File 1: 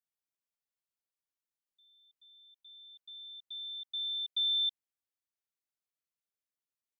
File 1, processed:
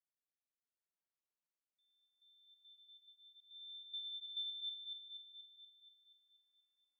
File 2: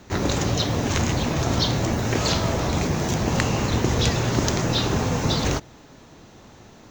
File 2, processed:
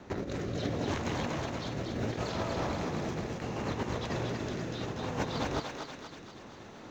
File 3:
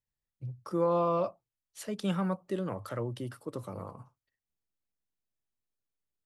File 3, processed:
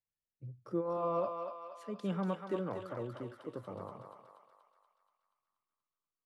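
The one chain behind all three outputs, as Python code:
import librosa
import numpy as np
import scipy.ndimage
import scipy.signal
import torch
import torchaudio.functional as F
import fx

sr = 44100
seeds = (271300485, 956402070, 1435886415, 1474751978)

p1 = fx.lowpass(x, sr, hz=1600.0, slope=6)
p2 = fx.low_shelf(p1, sr, hz=140.0, db=-10.0)
p3 = fx.over_compress(p2, sr, threshold_db=-30.0, ratio=-0.5)
p4 = fx.rotary(p3, sr, hz=0.7)
p5 = p4 + fx.echo_thinned(p4, sr, ms=239, feedback_pct=63, hz=710.0, wet_db=-3.5, dry=0)
y = p5 * 10.0 ** (-1.5 / 20.0)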